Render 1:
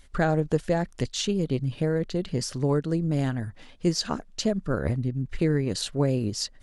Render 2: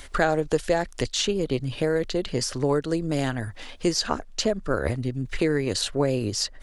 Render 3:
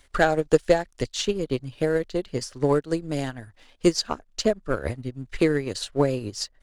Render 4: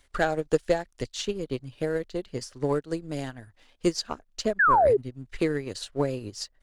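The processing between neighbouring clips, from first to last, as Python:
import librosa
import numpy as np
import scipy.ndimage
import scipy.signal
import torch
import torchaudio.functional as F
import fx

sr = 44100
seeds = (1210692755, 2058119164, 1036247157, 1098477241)

y1 = fx.peak_eq(x, sr, hz=170.0, db=-11.0, octaves=1.3)
y1 = fx.band_squash(y1, sr, depth_pct=40)
y1 = y1 * 10.0 ** (5.0 / 20.0)
y2 = fx.leveller(y1, sr, passes=1)
y2 = fx.upward_expand(y2, sr, threshold_db=-28.0, expansion=2.5)
y2 = y2 * 10.0 ** (3.0 / 20.0)
y3 = fx.spec_paint(y2, sr, seeds[0], shape='fall', start_s=4.59, length_s=0.38, low_hz=380.0, high_hz=1800.0, level_db=-14.0)
y3 = y3 * 10.0 ** (-5.0 / 20.0)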